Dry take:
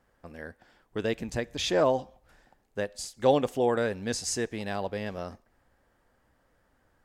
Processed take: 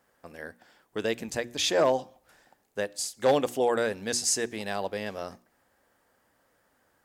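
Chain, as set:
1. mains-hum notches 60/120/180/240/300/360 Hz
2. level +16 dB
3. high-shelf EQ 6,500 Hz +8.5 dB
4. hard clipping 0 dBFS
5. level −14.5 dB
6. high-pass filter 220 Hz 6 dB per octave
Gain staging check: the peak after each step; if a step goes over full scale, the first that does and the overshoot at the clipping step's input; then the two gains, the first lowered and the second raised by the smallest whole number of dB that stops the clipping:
−8.5, +7.5, +7.5, 0.0, −14.5, −12.0 dBFS
step 2, 7.5 dB
step 2 +8 dB, step 5 −6.5 dB

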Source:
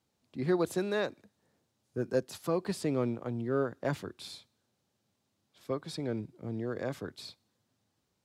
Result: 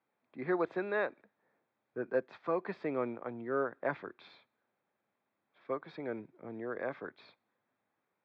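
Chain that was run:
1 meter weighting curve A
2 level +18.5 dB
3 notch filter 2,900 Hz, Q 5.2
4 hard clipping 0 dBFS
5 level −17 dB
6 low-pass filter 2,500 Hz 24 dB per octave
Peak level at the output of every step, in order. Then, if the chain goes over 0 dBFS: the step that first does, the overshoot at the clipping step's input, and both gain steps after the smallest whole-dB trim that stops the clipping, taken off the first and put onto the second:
−20.5, −2.0, −2.0, −2.0, −19.0, −19.0 dBFS
no step passes full scale

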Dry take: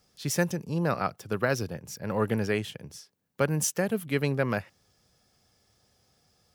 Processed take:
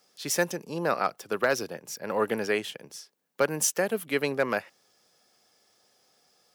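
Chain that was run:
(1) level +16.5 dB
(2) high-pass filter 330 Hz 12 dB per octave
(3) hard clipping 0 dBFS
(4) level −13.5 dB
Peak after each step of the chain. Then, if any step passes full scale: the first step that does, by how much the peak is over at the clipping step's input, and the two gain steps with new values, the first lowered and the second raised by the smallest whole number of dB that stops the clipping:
+6.5, +4.5, 0.0, −13.5 dBFS
step 1, 4.5 dB
step 1 +11.5 dB, step 4 −8.5 dB

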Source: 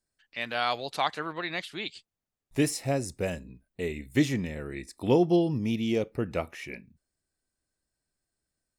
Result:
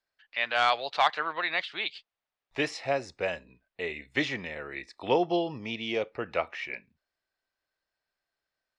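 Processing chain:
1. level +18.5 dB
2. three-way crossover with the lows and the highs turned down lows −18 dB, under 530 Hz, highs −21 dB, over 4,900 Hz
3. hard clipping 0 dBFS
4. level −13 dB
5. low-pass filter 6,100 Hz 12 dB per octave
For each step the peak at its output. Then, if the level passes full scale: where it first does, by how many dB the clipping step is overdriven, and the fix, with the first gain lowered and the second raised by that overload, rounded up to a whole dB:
+7.5, +4.0, 0.0, −13.0, −12.5 dBFS
step 1, 4.0 dB
step 1 +14.5 dB, step 4 −9 dB

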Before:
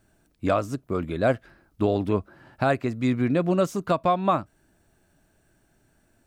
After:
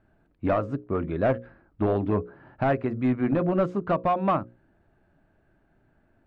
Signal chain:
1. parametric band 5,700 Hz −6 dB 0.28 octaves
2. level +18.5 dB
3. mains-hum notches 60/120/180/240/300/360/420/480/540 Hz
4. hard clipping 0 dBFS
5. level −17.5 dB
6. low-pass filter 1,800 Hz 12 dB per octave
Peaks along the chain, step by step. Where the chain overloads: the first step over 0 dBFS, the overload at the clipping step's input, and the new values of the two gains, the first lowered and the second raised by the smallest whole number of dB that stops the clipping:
−11.5, +7.0, +7.5, 0.0, −17.5, −17.0 dBFS
step 2, 7.5 dB
step 2 +10.5 dB, step 5 −9.5 dB

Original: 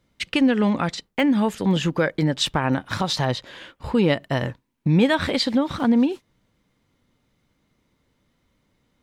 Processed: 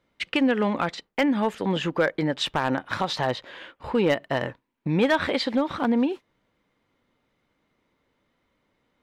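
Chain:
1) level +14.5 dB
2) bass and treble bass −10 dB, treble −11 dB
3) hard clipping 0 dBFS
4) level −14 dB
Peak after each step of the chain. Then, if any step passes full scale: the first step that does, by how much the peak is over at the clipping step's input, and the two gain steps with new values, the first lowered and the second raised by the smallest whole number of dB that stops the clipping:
+7.5, +6.5, 0.0, −14.0 dBFS
step 1, 6.5 dB
step 1 +7.5 dB, step 4 −7 dB

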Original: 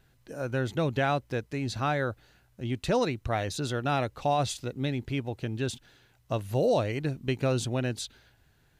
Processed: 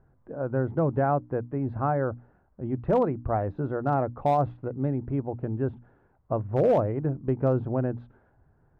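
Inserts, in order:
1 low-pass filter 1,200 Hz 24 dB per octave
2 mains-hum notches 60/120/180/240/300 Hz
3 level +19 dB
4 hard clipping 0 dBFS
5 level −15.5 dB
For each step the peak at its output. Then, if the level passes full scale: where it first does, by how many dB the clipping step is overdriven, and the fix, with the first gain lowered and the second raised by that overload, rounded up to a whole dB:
−17.0, −15.5, +3.5, 0.0, −15.5 dBFS
step 3, 3.5 dB
step 3 +15 dB, step 5 −11.5 dB

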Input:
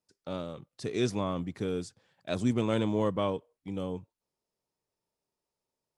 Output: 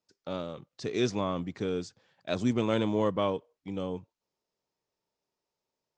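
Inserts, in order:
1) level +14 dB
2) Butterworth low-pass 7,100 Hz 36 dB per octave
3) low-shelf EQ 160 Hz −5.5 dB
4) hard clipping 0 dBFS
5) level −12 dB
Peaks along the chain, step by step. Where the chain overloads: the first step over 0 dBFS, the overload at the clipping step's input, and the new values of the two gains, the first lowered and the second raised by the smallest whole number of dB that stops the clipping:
−1.0, −1.0, −2.0, −2.0, −14.0 dBFS
no step passes full scale

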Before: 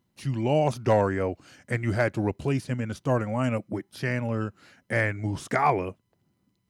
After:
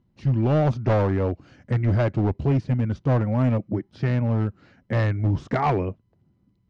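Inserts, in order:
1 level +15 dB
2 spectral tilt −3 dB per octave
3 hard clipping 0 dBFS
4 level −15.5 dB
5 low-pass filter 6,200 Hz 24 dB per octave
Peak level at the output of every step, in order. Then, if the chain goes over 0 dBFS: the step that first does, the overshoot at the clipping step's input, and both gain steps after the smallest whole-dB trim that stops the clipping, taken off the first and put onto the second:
+4.0, +9.5, 0.0, −15.5, −15.0 dBFS
step 1, 9.5 dB
step 1 +5 dB, step 4 −5.5 dB

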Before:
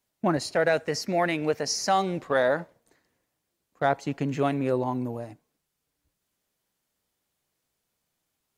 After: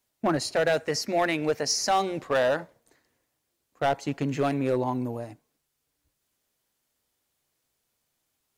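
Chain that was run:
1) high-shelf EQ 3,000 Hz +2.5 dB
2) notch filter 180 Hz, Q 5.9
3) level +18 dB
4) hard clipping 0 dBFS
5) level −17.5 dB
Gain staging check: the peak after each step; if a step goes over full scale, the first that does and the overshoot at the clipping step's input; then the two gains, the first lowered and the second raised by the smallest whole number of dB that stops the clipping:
−10.0, −10.0, +8.0, 0.0, −17.5 dBFS
step 3, 8.0 dB
step 3 +10 dB, step 5 −9.5 dB

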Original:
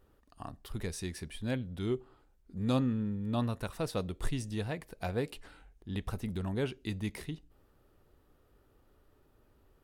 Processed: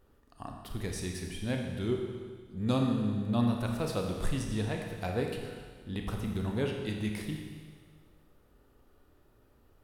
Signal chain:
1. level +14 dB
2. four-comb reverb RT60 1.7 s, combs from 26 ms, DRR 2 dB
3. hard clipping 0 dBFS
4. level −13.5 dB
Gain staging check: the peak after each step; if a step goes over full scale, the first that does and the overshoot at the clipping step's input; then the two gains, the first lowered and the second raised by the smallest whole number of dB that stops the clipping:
−4.5, −2.5, −2.5, −16.0 dBFS
no step passes full scale

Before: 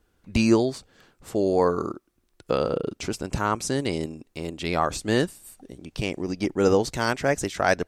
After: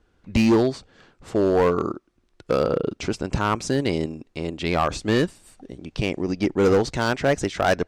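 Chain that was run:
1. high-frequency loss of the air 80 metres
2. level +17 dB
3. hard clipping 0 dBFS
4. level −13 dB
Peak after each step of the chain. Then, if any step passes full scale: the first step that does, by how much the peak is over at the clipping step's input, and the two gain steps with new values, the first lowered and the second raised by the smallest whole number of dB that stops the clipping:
−7.5, +9.5, 0.0, −13.0 dBFS
step 2, 9.5 dB
step 2 +7 dB, step 4 −3 dB

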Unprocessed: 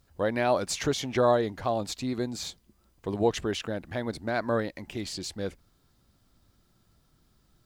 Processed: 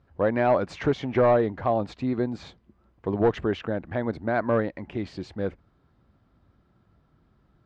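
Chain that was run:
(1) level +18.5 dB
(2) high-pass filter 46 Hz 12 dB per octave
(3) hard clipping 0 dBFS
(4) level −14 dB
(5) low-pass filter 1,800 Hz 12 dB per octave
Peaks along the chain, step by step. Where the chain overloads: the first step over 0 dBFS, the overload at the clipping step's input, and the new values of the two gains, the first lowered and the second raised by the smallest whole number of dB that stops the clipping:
+7.5, +8.0, 0.0, −14.0, −13.5 dBFS
step 1, 8.0 dB
step 1 +10.5 dB, step 4 −6 dB

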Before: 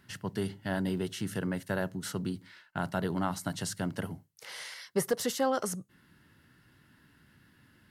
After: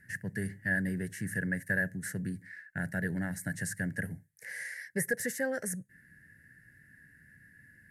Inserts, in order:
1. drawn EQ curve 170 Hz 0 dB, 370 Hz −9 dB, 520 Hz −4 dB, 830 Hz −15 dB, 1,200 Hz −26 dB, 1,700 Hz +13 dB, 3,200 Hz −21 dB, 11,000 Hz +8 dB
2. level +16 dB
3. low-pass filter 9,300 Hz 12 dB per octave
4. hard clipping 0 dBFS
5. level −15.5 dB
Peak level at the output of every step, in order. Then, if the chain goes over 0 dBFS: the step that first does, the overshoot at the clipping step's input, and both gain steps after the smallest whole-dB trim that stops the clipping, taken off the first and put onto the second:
−17.0, −1.0, −3.0, −3.0, −18.5 dBFS
no step passes full scale

